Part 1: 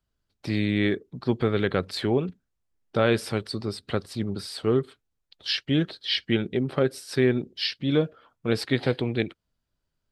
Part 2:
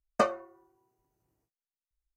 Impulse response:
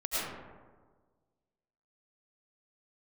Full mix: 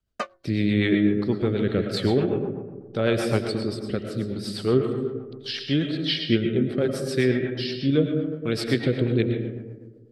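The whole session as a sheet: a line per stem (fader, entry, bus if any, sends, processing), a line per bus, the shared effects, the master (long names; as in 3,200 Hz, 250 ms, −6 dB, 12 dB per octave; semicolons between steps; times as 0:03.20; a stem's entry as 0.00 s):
+2.0 dB, 0.00 s, send −9 dB, rotating-speaker cabinet horn 0.8 Hz
−6.0 dB, 0.00 s, no send, adaptive Wiener filter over 15 samples; parametric band 2,900 Hz +12 dB 2.6 octaves; expander for the loud parts 1.5 to 1, over −31 dBFS; automatic ducking −10 dB, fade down 0.30 s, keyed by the first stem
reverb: on, RT60 1.5 s, pre-delay 65 ms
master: rotating-speaker cabinet horn 8 Hz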